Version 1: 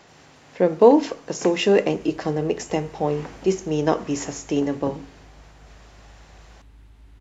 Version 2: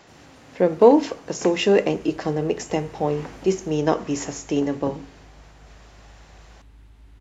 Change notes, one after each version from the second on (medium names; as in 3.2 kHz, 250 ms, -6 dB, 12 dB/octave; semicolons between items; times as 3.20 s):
first sound +7.5 dB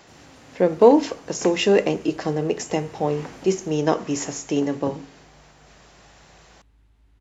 speech: add treble shelf 5.2 kHz +4.5 dB; second sound -9.5 dB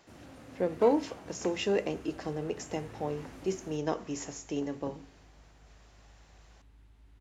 speech -11.5 dB